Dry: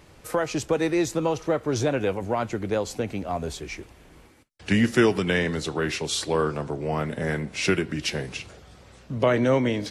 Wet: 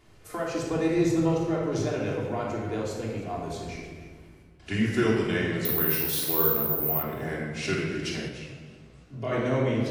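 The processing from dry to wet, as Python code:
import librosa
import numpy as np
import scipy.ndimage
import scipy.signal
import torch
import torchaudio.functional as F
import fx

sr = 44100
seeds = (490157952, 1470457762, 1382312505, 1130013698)

y = fx.peak_eq(x, sr, hz=98.0, db=9.0, octaves=3.0, at=(0.71, 1.29))
y = y + 10.0 ** (-17.5 / 20.0) * np.pad(y, (int(309 * sr / 1000.0), 0))[:len(y)]
y = fx.room_shoebox(y, sr, seeds[0], volume_m3=1700.0, walls='mixed', distance_m=3.2)
y = fx.resample_bad(y, sr, factor=3, down='filtered', up='zero_stuff', at=(5.65, 7.03))
y = fx.comb_fb(y, sr, f0_hz=220.0, decay_s=0.64, harmonics='all', damping=0.0, mix_pct=60)
y = fx.detune_double(y, sr, cents=58, at=(8.28, 9.31), fade=0.02)
y = y * 10.0 ** (-3.0 / 20.0)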